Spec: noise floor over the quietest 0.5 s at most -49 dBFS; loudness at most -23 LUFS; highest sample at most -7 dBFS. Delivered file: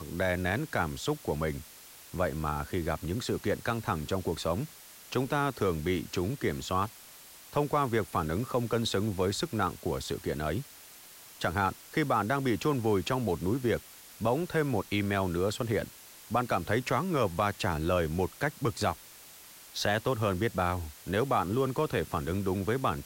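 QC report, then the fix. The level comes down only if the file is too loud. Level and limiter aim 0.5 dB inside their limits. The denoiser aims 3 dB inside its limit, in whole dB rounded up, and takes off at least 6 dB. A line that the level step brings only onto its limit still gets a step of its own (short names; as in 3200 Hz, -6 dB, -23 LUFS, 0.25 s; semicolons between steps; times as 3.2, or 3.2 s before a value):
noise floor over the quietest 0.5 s -51 dBFS: OK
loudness -31.0 LUFS: OK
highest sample -16.0 dBFS: OK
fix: none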